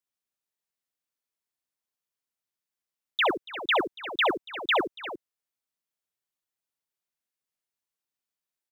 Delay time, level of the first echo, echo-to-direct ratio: 65 ms, −9.0 dB, −7.5 dB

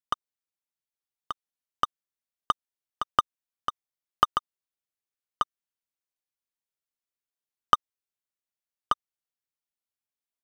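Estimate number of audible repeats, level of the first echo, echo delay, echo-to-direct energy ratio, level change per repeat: 1, −5.5 dB, 1,182 ms, −5.5 dB, repeats not evenly spaced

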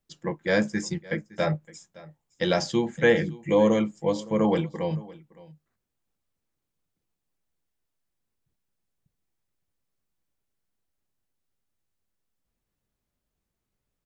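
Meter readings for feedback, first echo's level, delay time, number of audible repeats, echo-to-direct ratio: repeats not evenly spaced, −21.0 dB, 564 ms, 1, −21.0 dB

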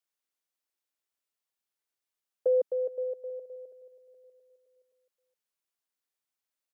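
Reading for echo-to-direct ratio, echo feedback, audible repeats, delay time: −19.5 dB, 54%, 3, 421 ms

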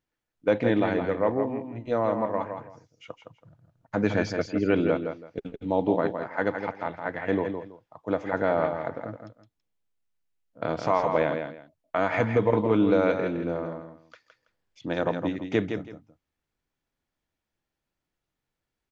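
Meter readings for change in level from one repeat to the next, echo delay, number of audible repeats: −13.0 dB, 164 ms, 2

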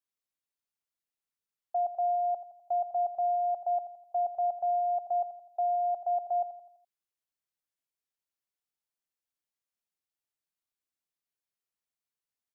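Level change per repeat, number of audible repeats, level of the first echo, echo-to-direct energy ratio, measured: −6.5 dB, 4, −13.0 dB, −12.0 dB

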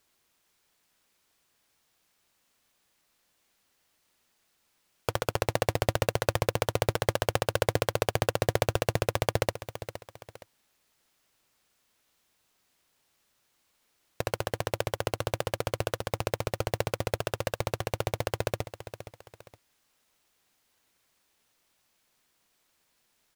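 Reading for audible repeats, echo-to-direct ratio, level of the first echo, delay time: 2, −12.0 dB, −12.5 dB, 467 ms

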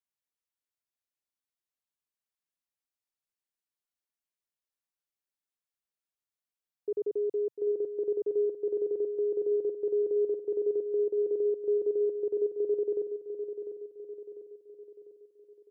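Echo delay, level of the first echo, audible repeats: 698 ms, −9.0 dB, 5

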